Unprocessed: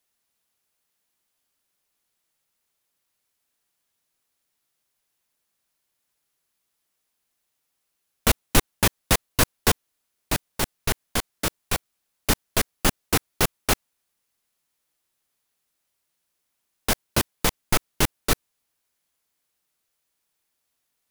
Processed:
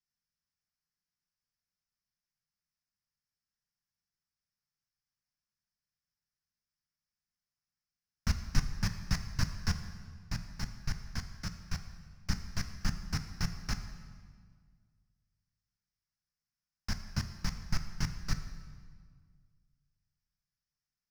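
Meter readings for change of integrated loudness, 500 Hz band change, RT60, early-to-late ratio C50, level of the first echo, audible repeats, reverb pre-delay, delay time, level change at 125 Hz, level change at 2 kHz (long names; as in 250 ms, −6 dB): −13.5 dB, −27.0 dB, 1.8 s, 9.5 dB, no echo audible, no echo audible, 3 ms, no echo audible, −5.5 dB, −15.0 dB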